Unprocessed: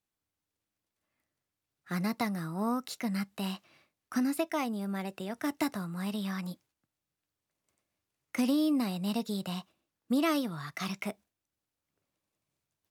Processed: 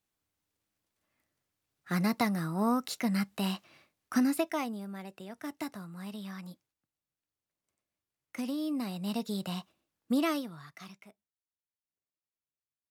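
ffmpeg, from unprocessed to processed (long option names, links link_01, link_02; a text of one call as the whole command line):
ffmpeg -i in.wav -af "volume=10dB,afade=type=out:start_time=4.19:duration=0.71:silence=0.316228,afade=type=in:start_time=8.57:duration=0.83:silence=0.446684,afade=type=out:start_time=10.19:duration=0.28:silence=0.446684,afade=type=out:start_time=10.47:duration=0.6:silence=0.223872" out.wav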